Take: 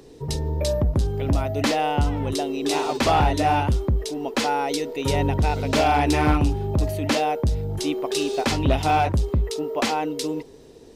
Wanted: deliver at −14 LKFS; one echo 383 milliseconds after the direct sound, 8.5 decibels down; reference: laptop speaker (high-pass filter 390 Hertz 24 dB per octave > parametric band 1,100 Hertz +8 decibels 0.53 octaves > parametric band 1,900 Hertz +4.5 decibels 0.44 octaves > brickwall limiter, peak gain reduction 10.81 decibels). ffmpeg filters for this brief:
ffmpeg -i in.wav -af "highpass=frequency=390:width=0.5412,highpass=frequency=390:width=1.3066,equalizer=frequency=1100:width_type=o:width=0.53:gain=8,equalizer=frequency=1900:width_type=o:width=0.44:gain=4.5,aecho=1:1:383:0.376,volume=13dB,alimiter=limit=-3.5dB:level=0:latency=1" out.wav

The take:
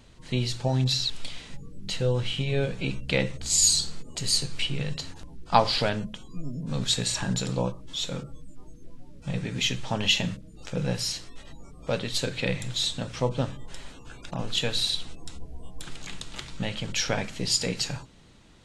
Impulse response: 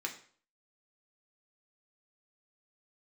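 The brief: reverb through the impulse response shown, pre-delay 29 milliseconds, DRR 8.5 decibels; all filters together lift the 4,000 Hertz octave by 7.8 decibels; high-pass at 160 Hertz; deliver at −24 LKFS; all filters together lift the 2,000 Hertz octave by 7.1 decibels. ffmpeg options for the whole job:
-filter_complex "[0:a]highpass=160,equalizer=frequency=2000:width_type=o:gain=6.5,equalizer=frequency=4000:width_type=o:gain=7.5,asplit=2[link_01][link_02];[1:a]atrim=start_sample=2205,adelay=29[link_03];[link_02][link_03]afir=irnorm=-1:irlink=0,volume=-10.5dB[link_04];[link_01][link_04]amix=inputs=2:normalize=0,volume=-2.5dB"

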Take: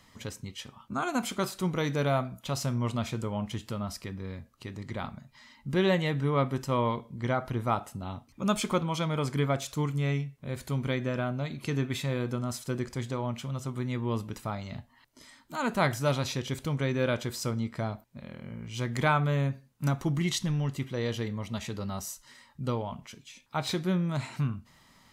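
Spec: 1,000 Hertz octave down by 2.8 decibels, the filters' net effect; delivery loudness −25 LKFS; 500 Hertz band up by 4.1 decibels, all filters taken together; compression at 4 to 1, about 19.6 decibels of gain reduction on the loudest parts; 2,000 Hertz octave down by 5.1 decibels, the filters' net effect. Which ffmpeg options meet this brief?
ffmpeg -i in.wav -af "equalizer=frequency=500:width_type=o:gain=6.5,equalizer=frequency=1000:width_type=o:gain=-4.5,equalizer=frequency=2000:width_type=o:gain=-5.5,acompressor=threshold=-44dB:ratio=4,volume=21dB" out.wav

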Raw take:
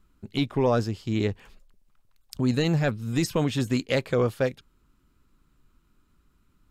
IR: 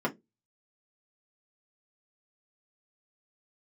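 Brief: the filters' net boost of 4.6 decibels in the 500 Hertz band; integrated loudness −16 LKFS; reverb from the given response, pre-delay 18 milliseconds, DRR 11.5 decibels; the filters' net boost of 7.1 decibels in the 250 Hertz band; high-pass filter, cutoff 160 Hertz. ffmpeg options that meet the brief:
-filter_complex "[0:a]highpass=160,equalizer=frequency=250:width_type=o:gain=8.5,equalizer=frequency=500:width_type=o:gain=3,asplit=2[link_01][link_02];[1:a]atrim=start_sample=2205,adelay=18[link_03];[link_02][link_03]afir=irnorm=-1:irlink=0,volume=-20.5dB[link_04];[link_01][link_04]amix=inputs=2:normalize=0,volume=5dB"

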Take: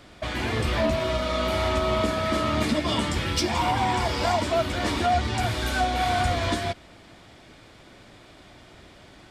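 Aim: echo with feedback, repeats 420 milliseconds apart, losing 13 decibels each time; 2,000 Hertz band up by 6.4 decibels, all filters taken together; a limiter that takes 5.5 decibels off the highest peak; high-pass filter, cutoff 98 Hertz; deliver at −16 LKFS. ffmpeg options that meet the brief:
ffmpeg -i in.wav -af "highpass=98,equalizer=frequency=2000:width_type=o:gain=8,alimiter=limit=-15.5dB:level=0:latency=1,aecho=1:1:420|840|1260:0.224|0.0493|0.0108,volume=8dB" out.wav

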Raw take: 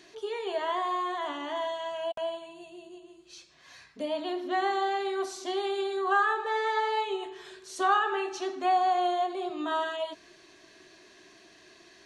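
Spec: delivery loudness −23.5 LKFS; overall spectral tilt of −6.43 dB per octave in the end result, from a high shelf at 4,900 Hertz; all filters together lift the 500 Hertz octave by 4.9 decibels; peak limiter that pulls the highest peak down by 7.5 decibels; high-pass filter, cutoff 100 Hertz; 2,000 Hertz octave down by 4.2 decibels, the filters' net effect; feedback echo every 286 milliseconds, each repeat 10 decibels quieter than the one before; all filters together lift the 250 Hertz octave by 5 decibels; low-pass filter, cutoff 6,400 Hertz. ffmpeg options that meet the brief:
ffmpeg -i in.wav -af "highpass=100,lowpass=6400,equalizer=frequency=250:width_type=o:gain=4,equalizer=frequency=500:width_type=o:gain=6,equalizer=frequency=2000:width_type=o:gain=-6.5,highshelf=frequency=4900:gain=4.5,alimiter=limit=-19.5dB:level=0:latency=1,aecho=1:1:286|572|858|1144:0.316|0.101|0.0324|0.0104,volume=5dB" out.wav

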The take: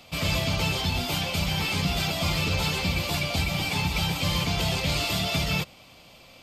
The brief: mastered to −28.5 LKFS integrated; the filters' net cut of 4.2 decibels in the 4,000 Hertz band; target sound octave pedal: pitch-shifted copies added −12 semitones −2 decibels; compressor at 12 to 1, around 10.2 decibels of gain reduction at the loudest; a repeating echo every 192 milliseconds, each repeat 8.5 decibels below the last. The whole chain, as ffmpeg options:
ffmpeg -i in.wav -filter_complex "[0:a]equalizer=frequency=4000:width_type=o:gain=-5.5,acompressor=threshold=-32dB:ratio=12,aecho=1:1:192|384|576|768:0.376|0.143|0.0543|0.0206,asplit=2[link_01][link_02];[link_02]asetrate=22050,aresample=44100,atempo=2,volume=-2dB[link_03];[link_01][link_03]amix=inputs=2:normalize=0,volume=5.5dB" out.wav

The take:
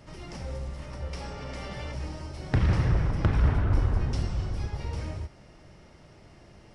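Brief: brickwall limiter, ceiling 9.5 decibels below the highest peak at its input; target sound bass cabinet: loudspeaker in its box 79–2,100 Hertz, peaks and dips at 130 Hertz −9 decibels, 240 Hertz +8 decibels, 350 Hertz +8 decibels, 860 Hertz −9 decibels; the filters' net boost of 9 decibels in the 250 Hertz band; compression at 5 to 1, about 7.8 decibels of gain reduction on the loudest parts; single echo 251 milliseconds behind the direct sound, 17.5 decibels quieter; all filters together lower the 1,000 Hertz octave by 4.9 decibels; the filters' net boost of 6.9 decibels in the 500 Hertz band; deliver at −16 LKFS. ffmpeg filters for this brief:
ffmpeg -i in.wav -af "equalizer=frequency=250:width_type=o:gain=5,equalizer=frequency=500:width_type=o:gain=4,equalizer=frequency=1000:width_type=o:gain=-3.5,acompressor=threshold=-26dB:ratio=5,alimiter=level_in=0.5dB:limit=-24dB:level=0:latency=1,volume=-0.5dB,highpass=frequency=79:width=0.5412,highpass=frequency=79:width=1.3066,equalizer=frequency=130:width_type=q:width=4:gain=-9,equalizer=frequency=240:width_type=q:width=4:gain=8,equalizer=frequency=350:width_type=q:width=4:gain=8,equalizer=frequency=860:width_type=q:width=4:gain=-9,lowpass=frequency=2100:width=0.5412,lowpass=frequency=2100:width=1.3066,aecho=1:1:251:0.133,volume=19.5dB" out.wav

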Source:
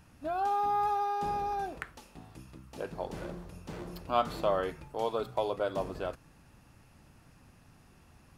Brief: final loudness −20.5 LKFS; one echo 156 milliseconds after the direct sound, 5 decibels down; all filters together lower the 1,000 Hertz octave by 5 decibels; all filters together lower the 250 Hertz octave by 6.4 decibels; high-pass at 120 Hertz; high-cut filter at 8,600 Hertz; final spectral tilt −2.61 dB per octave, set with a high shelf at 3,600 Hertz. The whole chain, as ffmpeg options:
ffmpeg -i in.wav -af "highpass=120,lowpass=8600,equalizer=frequency=250:width_type=o:gain=-9,equalizer=frequency=1000:width_type=o:gain=-6.5,highshelf=frequency=3600:gain=3.5,aecho=1:1:156:0.562,volume=16dB" out.wav

